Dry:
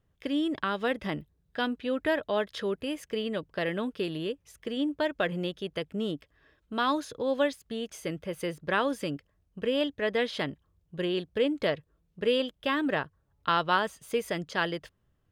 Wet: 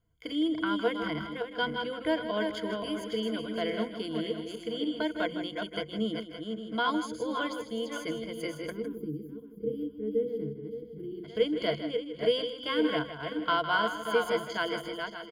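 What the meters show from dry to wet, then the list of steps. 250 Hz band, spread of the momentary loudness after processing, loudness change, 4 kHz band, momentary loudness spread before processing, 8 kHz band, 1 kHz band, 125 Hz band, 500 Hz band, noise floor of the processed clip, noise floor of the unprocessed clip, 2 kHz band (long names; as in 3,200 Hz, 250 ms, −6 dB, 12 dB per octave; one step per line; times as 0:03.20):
−0.5 dB, 9 LU, −1.0 dB, +0.5 dB, 9 LU, −2.0 dB, −1.5 dB, −3.0 dB, −1.0 dB, −46 dBFS, −72 dBFS, −1.5 dB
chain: feedback delay that plays each chunk backwards 285 ms, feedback 48%, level −5 dB
EQ curve with evenly spaced ripples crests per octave 1.8, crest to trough 17 dB
gain on a spectral selection 0:08.71–0:11.25, 490–11,000 Hz −30 dB
single-tap delay 158 ms −11 dB
level −6 dB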